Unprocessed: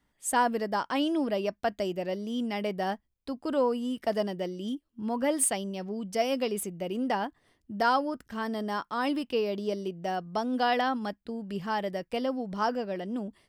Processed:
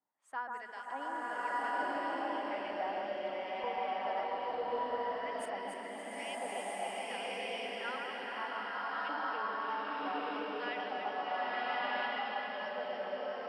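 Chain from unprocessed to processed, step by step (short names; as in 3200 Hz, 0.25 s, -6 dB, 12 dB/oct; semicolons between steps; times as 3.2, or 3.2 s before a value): HPF 93 Hz; high shelf 5600 Hz -6 dB; notches 60/120/180/240 Hz; reverse; upward compressor, threshold -39 dBFS; reverse; harmonic tremolo 2.3 Hz, depth 50%, crossover 410 Hz; LFO band-pass saw up 1.1 Hz 750–2900 Hz; on a send: echo with dull and thin repeats by turns 0.142 s, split 1600 Hz, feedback 72%, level -3 dB; on the sum: bloom reverb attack 1.31 s, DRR -8 dB; gain -4 dB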